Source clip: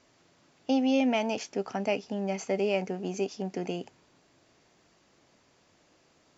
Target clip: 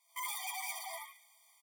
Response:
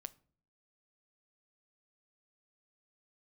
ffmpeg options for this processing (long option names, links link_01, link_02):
-filter_complex "[0:a]afftfilt=real='re':imag='-im':win_size=4096:overlap=0.75,lowpass=frequency=3400:width=0.5412,lowpass=frequency=3400:width=1.3066,bandreject=frequency=60:width_type=h:width=6,bandreject=frequency=120:width_type=h:width=6,bandreject=frequency=180:width_type=h:width=6,bandreject=frequency=240:width_type=h:width=6,bandreject=frequency=300:width_type=h:width=6,bandreject=frequency=360:width_type=h:width=6,bandreject=frequency=420:width_type=h:width=6,bandreject=frequency=480:width_type=h:width=6,dynaudnorm=framelen=190:gausssize=5:maxgain=7dB,asoftclip=type=tanh:threshold=-27dB,asplit=6[link_01][link_02][link_03][link_04][link_05][link_06];[link_02]adelay=280,afreqshift=55,volume=-5dB[link_07];[link_03]adelay=560,afreqshift=110,volume=-13.2dB[link_08];[link_04]adelay=840,afreqshift=165,volume=-21.4dB[link_09];[link_05]adelay=1120,afreqshift=220,volume=-29.5dB[link_10];[link_06]adelay=1400,afreqshift=275,volume=-37.7dB[link_11];[link_01][link_07][link_08][link_09][link_10][link_11]amix=inputs=6:normalize=0,volume=32.5dB,asoftclip=hard,volume=-32.5dB,crystalizer=i=10:c=0,asetrate=173313,aresample=44100,afftfilt=real='re*eq(mod(floor(b*sr/1024/620),2),1)':imag='im*eq(mod(floor(b*sr/1024/620),2),1)':win_size=1024:overlap=0.75,volume=-7.5dB"